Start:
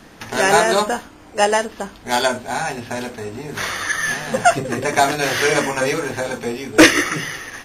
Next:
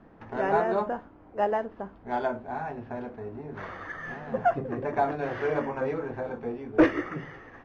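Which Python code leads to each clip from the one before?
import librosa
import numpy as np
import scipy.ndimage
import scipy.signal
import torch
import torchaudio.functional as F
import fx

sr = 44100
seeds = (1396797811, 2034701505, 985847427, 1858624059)

y = scipy.signal.sosfilt(scipy.signal.butter(2, 1100.0, 'lowpass', fs=sr, output='sos'), x)
y = y * 10.0 ** (-8.5 / 20.0)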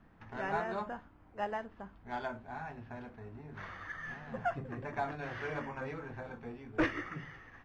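y = fx.peak_eq(x, sr, hz=450.0, db=-12.0, octaves=2.3)
y = y * 10.0 ** (-2.0 / 20.0)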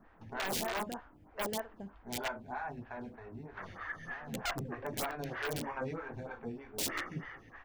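y = (np.mod(10.0 ** (30.5 / 20.0) * x + 1.0, 2.0) - 1.0) / 10.0 ** (30.5 / 20.0)
y = fx.stagger_phaser(y, sr, hz=3.2)
y = y * 10.0 ** (4.5 / 20.0)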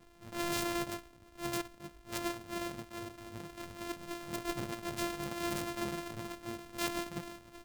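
y = np.r_[np.sort(x[:len(x) // 128 * 128].reshape(-1, 128), axis=1).ravel(), x[len(x) // 128 * 128:]]
y = fx.attack_slew(y, sr, db_per_s=210.0)
y = y * 10.0 ** (1.0 / 20.0)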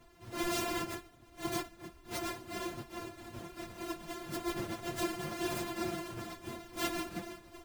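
y = fx.phase_scramble(x, sr, seeds[0], window_ms=50)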